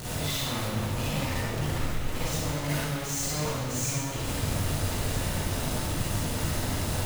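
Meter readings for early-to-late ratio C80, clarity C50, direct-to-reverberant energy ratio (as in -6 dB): -0.5 dB, -5.0 dB, -9.5 dB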